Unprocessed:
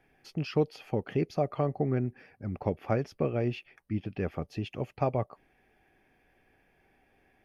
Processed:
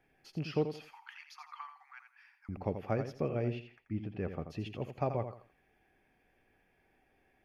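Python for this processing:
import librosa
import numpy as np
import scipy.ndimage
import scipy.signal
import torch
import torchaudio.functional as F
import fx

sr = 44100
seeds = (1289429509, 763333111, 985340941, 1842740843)

y = fx.steep_highpass(x, sr, hz=880.0, slope=96, at=(0.85, 2.49))
y = fx.high_shelf(y, sr, hz=4100.0, db=-9.5, at=(3.53, 4.5))
y = fx.echo_feedback(y, sr, ms=84, feedback_pct=25, wet_db=-9.0)
y = y * 10.0 ** (-5.0 / 20.0)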